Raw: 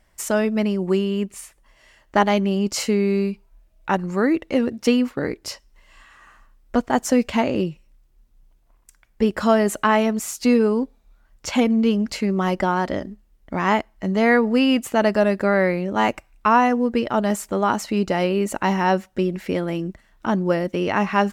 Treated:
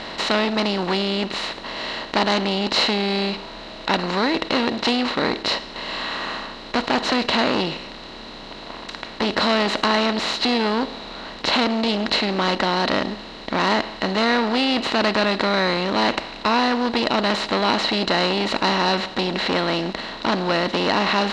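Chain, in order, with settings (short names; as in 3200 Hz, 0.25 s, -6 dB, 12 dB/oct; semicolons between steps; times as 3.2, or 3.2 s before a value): per-bin compression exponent 0.4; synth low-pass 3900 Hz, resonance Q 14; core saturation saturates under 1900 Hz; gain -5 dB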